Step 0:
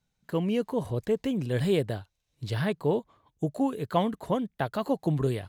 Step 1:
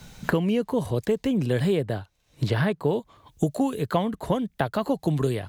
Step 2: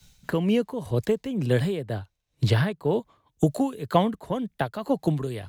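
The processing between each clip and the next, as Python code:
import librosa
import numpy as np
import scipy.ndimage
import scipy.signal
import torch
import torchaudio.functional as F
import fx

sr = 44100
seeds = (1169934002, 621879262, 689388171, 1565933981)

y1 = fx.band_squash(x, sr, depth_pct=100)
y1 = y1 * 10.0 ** (2.5 / 20.0)
y2 = y1 * (1.0 - 0.51 / 2.0 + 0.51 / 2.0 * np.cos(2.0 * np.pi * 2.0 * (np.arange(len(y1)) / sr)))
y2 = fx.band_widen(y2, sr, depth_pct=70)
y2 = y2 * 10.0 ** (1.5 / 20.0)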